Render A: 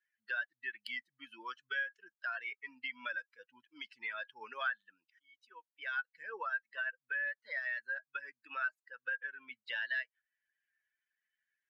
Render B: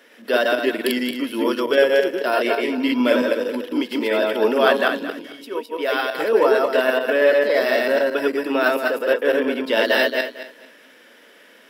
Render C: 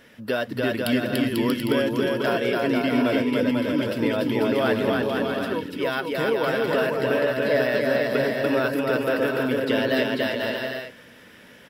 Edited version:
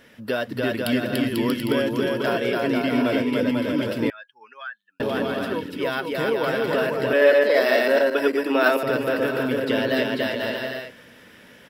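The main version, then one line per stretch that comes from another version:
C
4.10–5.00 s: from A
7.13–8.83 s: from B

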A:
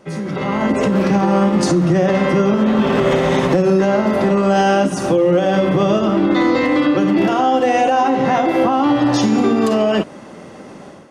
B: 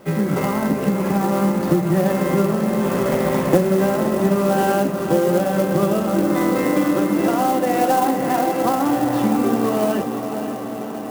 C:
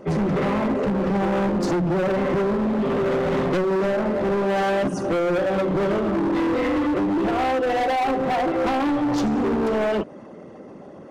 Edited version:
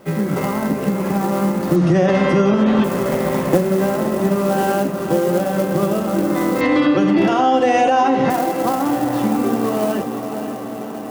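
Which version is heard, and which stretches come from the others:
B
1.76–2.84 s: from A
6.61–8.30 s: from A
not used: C

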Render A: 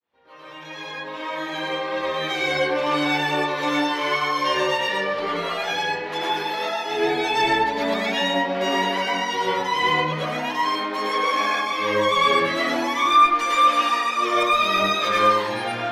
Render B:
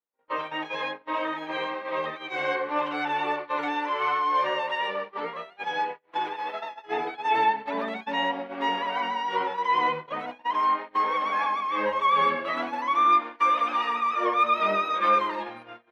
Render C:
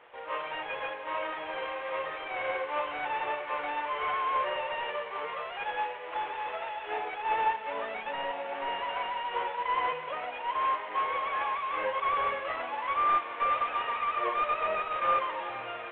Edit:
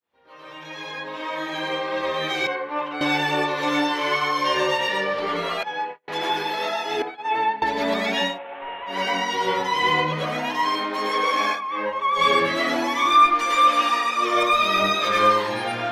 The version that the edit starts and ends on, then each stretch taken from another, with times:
A
2.47–3.01 s: from B
5.63–6.08 s: from B
7.02–7.62 s: from B
8.31–8.94 s: from C, crossfade 0.16 s
11.56–12.17 s: from B, crossfade 0.10 s

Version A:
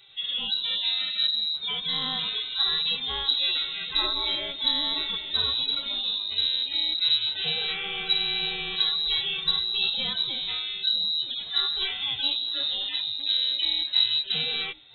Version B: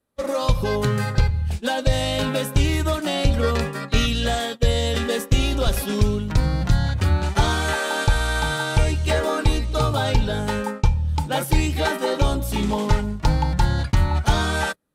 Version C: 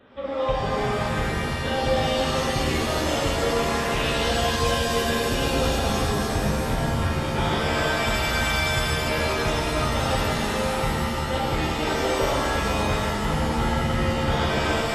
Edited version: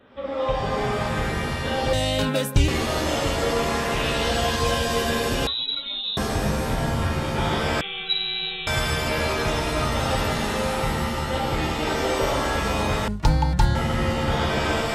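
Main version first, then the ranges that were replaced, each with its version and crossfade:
C
1.93–2.68 s: from B
5.47–6.17 s: from A
7.81–8.67 s: from A
13.08–13.75 s: from B

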